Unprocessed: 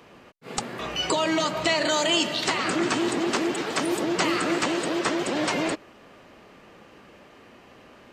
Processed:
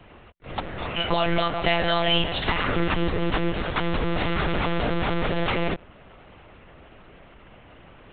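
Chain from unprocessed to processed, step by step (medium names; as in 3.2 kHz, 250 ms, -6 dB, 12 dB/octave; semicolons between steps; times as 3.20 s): 3.83–5.31 s: Schmitt trigger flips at -35 dBFS; monotone LPC vocoder at 8 kHz 170 Hz; trim +2 dB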